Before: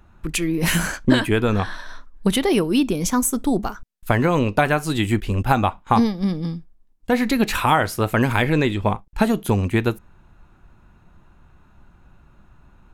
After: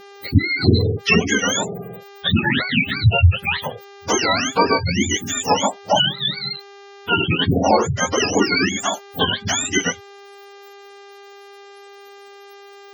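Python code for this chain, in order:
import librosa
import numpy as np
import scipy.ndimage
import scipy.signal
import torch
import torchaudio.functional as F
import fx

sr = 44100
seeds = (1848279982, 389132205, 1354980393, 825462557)

y = fx.octave_mirror(x, sr, pivot_hz=830.0)
y = fx.dmg_buzz(y, sr, base_hz=400.0, harmonics=32, level_db=-46.0, tilt_db=-5, odd_only=False)
y = fx.spec_gate(y, sr, threshold_db=-20, keep='strong')
y = y * 10.0 ** (4.0 / 20.0)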